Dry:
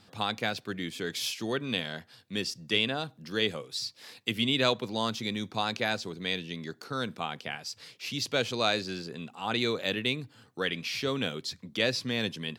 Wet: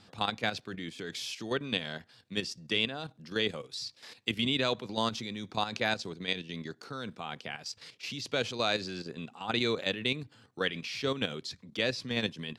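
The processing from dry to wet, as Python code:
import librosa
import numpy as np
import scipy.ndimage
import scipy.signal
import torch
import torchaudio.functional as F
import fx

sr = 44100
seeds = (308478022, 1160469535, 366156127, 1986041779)

y = scipy.signal.sosfilt(scipy.signal.butter(2, 9000.0, 'lowpass', fs=sr, output='sos'), x)
y = fx.level_steps(y, sr, step_db=10)
y = F.gain(torch.from_numpy(y), 1.5).numpy()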